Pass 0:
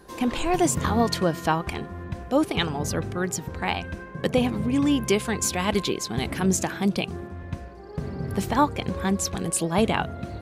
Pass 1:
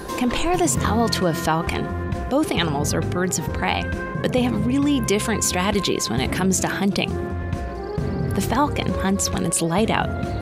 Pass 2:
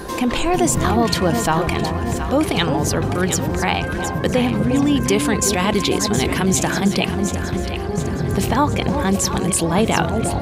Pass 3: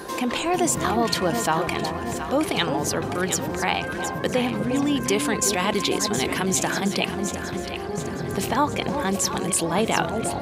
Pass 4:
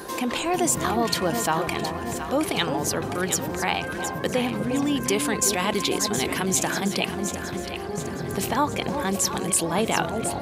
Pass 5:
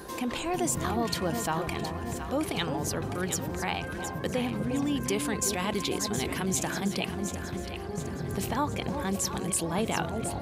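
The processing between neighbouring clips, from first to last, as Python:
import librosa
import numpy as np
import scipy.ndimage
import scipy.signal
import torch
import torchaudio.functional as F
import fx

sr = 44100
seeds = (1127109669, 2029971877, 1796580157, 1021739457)

y1 = fx.env_flatten(x, sr, amount_pct=50)
y2 = fx.echo_alternate(y1, sr, ms=359, hz=890.0, feedback_pct=70, wet_db=-6.0)
y2 = y2 * librosa.db_to_amplitude(2.0)
y3 = fx.highpass(y2, sr, hz=270.0, slope=6)
y3 = y3 * librosa.db_to_amplitude(-3.0)
y4 = fx.high_shelf(y3, sr, hz=10000.0, db=6.5)
y4 = y4 * librosa.db_to_amplitude(-1.5)
y5 = fx.low_shelf(y4, sr, hz=130.0, db=11.5)
y5 = y5 * librosa.db_to_amplitude(-7.0)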